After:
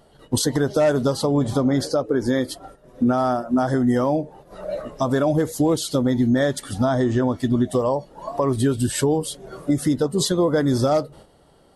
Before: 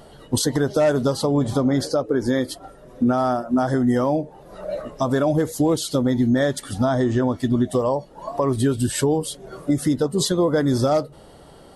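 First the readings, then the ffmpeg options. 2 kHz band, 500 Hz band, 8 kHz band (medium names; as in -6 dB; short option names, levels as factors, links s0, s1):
0.0 dB, 0.0 dB, 0.0 dB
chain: -af "agate=range=0.355:threshold=0.00708:ratio=16:detection=peak"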